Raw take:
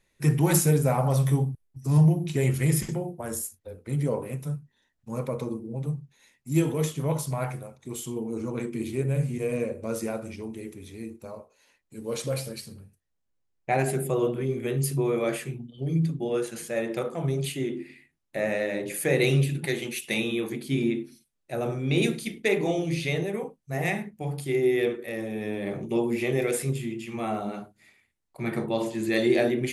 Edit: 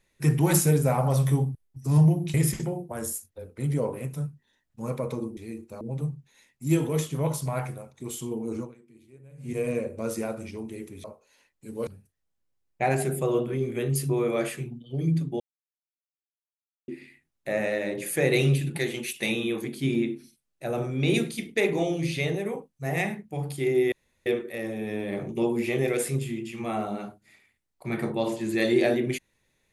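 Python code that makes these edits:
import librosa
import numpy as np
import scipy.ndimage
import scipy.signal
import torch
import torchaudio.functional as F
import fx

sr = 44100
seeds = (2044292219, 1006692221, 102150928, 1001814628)

y = fx.edit(x, sr, fx.cut(start_s=2.34, length_s=0.29),
    fx.fade_down_up(start_s=8.45, length_s=0.91, db=-24.0, fade_s=0.16, curve='qua'),
    fx.move(start_s=10.89, length_s=0.44, to_s=5.66),
    fx.cut(start_s=12.16, length_s=0.59),
    fx.silence(start_s=16.28, length_s=1.48),
    fx.insert_room_tone(at_s=24.8, length_s=0.34), tone=tone)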